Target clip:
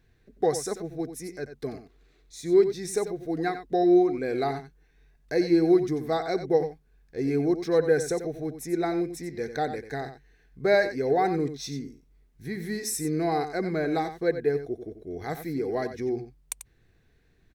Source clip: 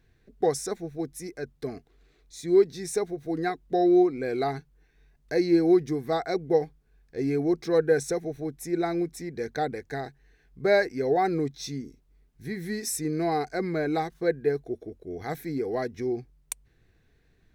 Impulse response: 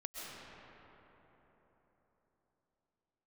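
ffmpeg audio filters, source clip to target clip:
-af "aecho=1:1:91:0.299"

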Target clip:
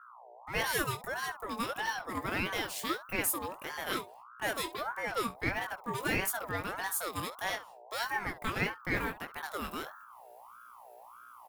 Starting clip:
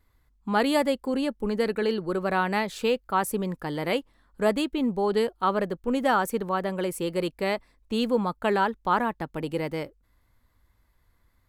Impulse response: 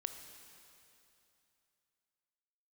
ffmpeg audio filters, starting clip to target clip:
-filter_complex "[0:a]agate=range=-26dB:threshold=-52dB:ratio=16:detection=peak,aemphasis=mode=production:type=bsi,bandreject=frequency=50:width_type=h:width=6,bandreject=frequency=100:width_type=h:width=6,bandreject=frequency=150:width_type=h:width=6,bandreject=frequency=200:width_type=h:width=6,bandreject=frequency=250:width_type=h:width=6,bandreject=frequency=300:width_type=h:width=6,bandreject=frequency=350:width_type=h:width=6,bandreject=frequency=400:width_type=h:width=6,bandreject=frequency=450:width_type=h:width=6,areverse,acompressor=mode=upward:threshold=-36dB:ratio=2.5,areverse,aeval=exprs='val(0)+0.00501*(sin(2*PI*60*n/s)+sin(2*PI*2*60*n/s)/2+sin(2*PI*3*60*n/s)/3+sin(2*PI*4*60*n/s)/4+sin(2*PI*5*60*n/s)/5)':channel_layout=same,asplit=2[link_01][link_02];[link_02]volume=28dB,asoftclip=hard,volume=-28dB,volume=-4.5dB[link_03];[link_01][link_03]amix=inputs=2:normalize=0,aecho=1:1:21|68:0.562|0.15,aeval=exprs='val(0)*sin(2*PI*1000*n/s+1000*0.35/1.6*sin(2*PI*1.6*n/s))':channel_layout=same,volume=-8.5dB"

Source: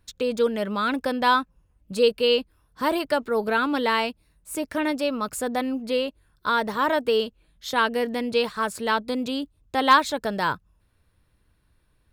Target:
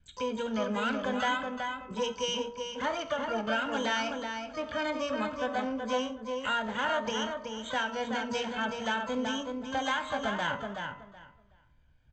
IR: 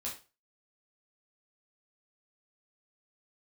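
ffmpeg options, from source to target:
-filter_complex "[0:a]aecho=1:1:1.3:0.86,bandreject=frequency=47.88:width_type=h:width=4,bandreject=frequency=95.76:width_type=h:width=4,bandreject=frequency=143.64:width_type=h:width=4,bandreject=frequency=191.52:width_type=h:width=4,bandreject=frequency=239.4:width_type=h:width=4,bandreject=frequency=287.28:width_type=h:width=4,bandreject=frequency=335.16:width_type=h:width=4,bandreject=frequency=383.04:width_type=h:width=4,bandreject=frequency=430.92:width_type=h:width=4,bandreject=frequency=478.8:width_type=h:width=4,bandreject=frequency=526.68:width_type=h:width=4,bandreject=frequency=574.56:width_type=h:width=4,bandreject=frequency=622.44:width_type=h:width=4,bandreject=frequency=670.32:width_type=h:width=4,bandreject=frequency=718.2:width_type=h:width=4,bandreject=frequency=766.08:width_type=h:width=4,bandreject=frequency=813.96:width_type=h:width=4,bandreject=frequency=861.84:width_type=h:width=4,bandreject=frequency=909.72:width_type=h:width=4,bandreject=frequency=957.6:width_type=h:width=4,bandreject=frequency=1005.48:width_type=h:width=4,bandreject=frequency=1053.36:width_type=h:width=4,bandreject=frequency=1101.24:width_type=h:width=4,bandreject=frequency=1149.12:width_type=h:width=4,bandreject=frequency=1197:width_type=h:width=4,bandreject=frequency=1244.88:width_type=h:width=4,bandreject=frequency=1292.76:width_type=h:width=4,bandreject=frequency=1340.64:width_type=h:width=4,bandreject=frequency=1388.52:width_type=h:width=4,adynamicequalizer=threshold=0.0158:dfrequency=860:dqfactor=3.7:tfrequency=860:tqfactor=3.7:attack=5:release=100:ratio=0.375:range=2.5:mode=cutabove:tftype=bell,acompressor=threshold=-22dB:ratio=5,aresample=8000,aresample=44100,asplit=2[link_01][link_02];[link_02]adelay=375,lowpass=frequency=2500:poles=1,volume=-4.5dB,asplit=2[link_03][link_04];[link_04]adelay=375,lowpass=frequency=2500:poles=1,volume=0.2,asplit=2[link_05][link_06];[link_06]adelay=375,lowpass=frequency=2500:poles=1,volume=0.2[link_07];[link_01][link_03][link_05][link_07]amix=inputs=4:normalize=0,asplit=2[link_08][link_09];[1:a]atrim=start_sample=2205[link_10];[link_09][link_10]afir=irnorm=-1:irlink=0,volume=-6.5dB[link_11];[link_08][link_11]amix=inputs=2:normalize=0,asplit=2[link_12][link_13];[link_13]asetrate=88200,aresample=44100,atempo=0.5,volume=-8dB[link_14];[link_12][link_14]amix=inputs=2:normalize=0,volume=-8.5dB"

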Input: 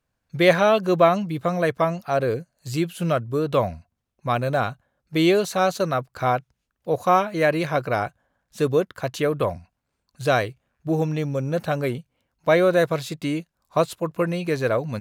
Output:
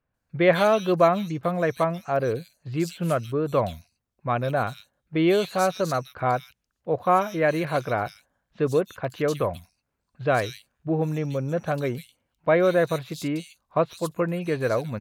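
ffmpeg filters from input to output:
ffmpeg -i in.wav -filter_complex "[0:a]acrossover=split=3100[link_01][link_02];[link_02]adelay=140[link_03];[link_01][link_03]amix=inputs=2:normalize=0,volume=-2dB" out.wav

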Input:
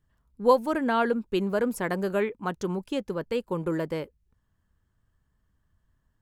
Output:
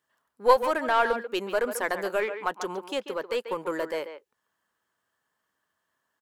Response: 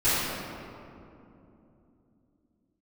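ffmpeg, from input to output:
-filter_complex "[0:a]highpass=550,asplit=2[link_01][link_02];[link_02]aeval=exprs='clip(val(0),-1,0.0266)':channel_layout=same,volume=-3dB[link_03];[link_01][link_03]amix=inputs=2:normalize=0,asplit=2[link_04][link_05];[link_05]adelay=140,highpass=300,lowpass=3400,asoftclip=type=hard:threshold=-14dB,volume=-9dB[link_06];[link_04][link_06]amix=inputs=2:normalize=0"

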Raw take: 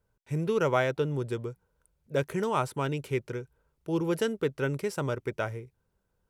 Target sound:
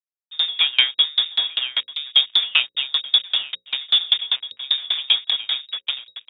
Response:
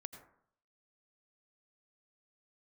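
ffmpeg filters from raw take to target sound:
-filter_complex "[0:a]asplit=2[link_01][link_02];[link_02]adelay=36,volume=-13.5dB[link_03];[link_01][link_03]amix=inputs=2:normalize=0,afwtdn=0.02,highshelf=frequency=2900:gain=-9.5,asplit=2[link_04][link_05];[link_05]aecho=0:1:890|1780|2670:0.531|0.0903|0.0153[link_06];[link_04][link_06]amix=inputs=2:normalize=0,dynaudnorm=framelen=100:gausssize=5:maxgain=8dB,lowshelf=frequency=210:gain=-4.5,acontrast=84,highpass=58,aresample=11025,acrusher=bits=3:mix=0:aa=0.5,aresample=44100,lowpass=frequency=3200:width_type=q:width=0.5098,lowpass=frequency=3200:width_type=q:width=0.6013,lowpass=frequency=3200:width_type=q:width=0.9,lowpass=frequency=3200:width_type=q:width=2.563,afreqshift=-3800,bandreject=frequency=60:width_type=h:width=6,bandreject=frequency=120:width_type=h:width=6,bandreject=frequency=180:width_type=h:width=6,bandreject=frequency=240:width_type=h:width=6,bandreject=frequency=300:width_type=h:width=6,bandreject=frequency=360:width_type=h:width=6,bandreject=frequency=420:width_type=h:width=6,bandreject=frequency=480:width_type=h:width=6,bandreject=frequency=540:width_type=h:width=6,aeval=exprs='val(0)*pow(10,-30*if(lt(mod(5.1*n/s,1),2*abs(5.1)/1000),1-mod(5.1*n/s,1)/(2*abs(5.1)/1000),(mod(5.1*n/s,1)-2*abs(5.1)/1000)/(1-2*abs(5.1)/1000))/20)':channel_layout=same,volume=2.5dB"

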